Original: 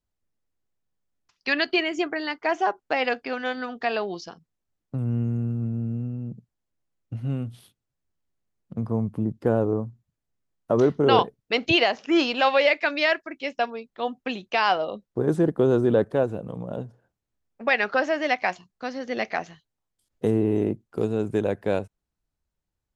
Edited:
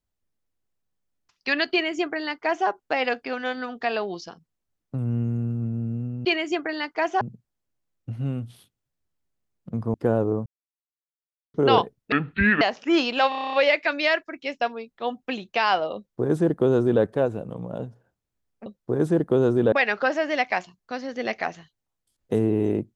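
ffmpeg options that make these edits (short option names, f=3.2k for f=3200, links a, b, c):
-filter_complex "[0:a]asplit=18[a][b][c][d][e][f][g][h][i][j][k][l][m][n][o][p][q][r];[a]atrim=end=6.252[s];[b]atrim=start=1.718:end=2.682[t];[c]atrim=start=6.248:end=8.982[u];[d]atrim=start=9.348:end=9.87,asetpts=PTS-STARTPTS,afade=t=out:st=0.518:d=0.004:c=hsin[v];[e]atrim=start=9.87:end=10.95,asetpts=PTS-STARTPTS,volume=0[w];[f]atrim=start=10.95:end=11.534,asetpts=PTS-STARTPTS,afade=t=in:d=0.004:c=hsin[x];[g]atrim=start=11.53:end=11.83,asetpts=PTS-STARTPTS,asetrate=26901,aresample=44100[y];[h]atrim=start=11.826:end=12.542[z];[i]atrim=start=12.508:end=12.542[aa];[j]atrim=start=12.508:end=12.542[ab];[k]atrim=start=12.508:end=12.542[ac];[l]atrim=start=12.508:end=12.542[ad];[m]atrim=start=12.508:end=12.542[ae];[n]atrim=start=12.508:end=12.542[af];[o]atrim=start=12.508:end=12.542[ag];[p]atrim=start=12.508:end=17.642[ah];[q]atrim=start=14.938:end=16.002[ai];[r]atrim=start=17.638[aj];[s][t]acrossfade=d=0.004:c1=hsin:c2=hsin[ak];[ak][u]acrossfade=d=0.004:c1=hsin:c2=hsin[al];[v][w][x]concat=n=3:v=0:a=1[am];[al][am]acrossfade=d=0.004:c1=hsin:c2=hsin[an];[an][y]acrossfade=d=0.004:c1=hsin:c2=hsin[ao];[ao][z]acrossfade=d=0.004:c1=hsin:c2=hsin[ap];[ap][aa]acrossfade=d=0.004:c1=hsin:c2=hsin[aq];[aq][ab]acrossfade=d=0.004:c1=hsin:c2=hsin[ar];[ar][ac]acrossfade=d=0.004:c1=hsin:c2=hsin[as];[as][ad]acrossfade=d=0.004:c1=hsin:c2=hsin[at];[at][ae]acrossfade=d=0.004:c1=hsin:c2=hsin[au];[au][af]acrossfade=d=0.004:c1=hsin:c2=hsin[av];[av][ag]acrossfade=d=0.004:c1=hsin:c2=hsin[aw];[aw][ah]acrossfade=d=0.004:c1=hsin:c2=hsin[ax];[ax][ai]acrossfade=d=0.004:c1=hsin:c2=hsin[ay];[ay][aj]acrossfade=d=0.004:c1=hsin:c2=hsin"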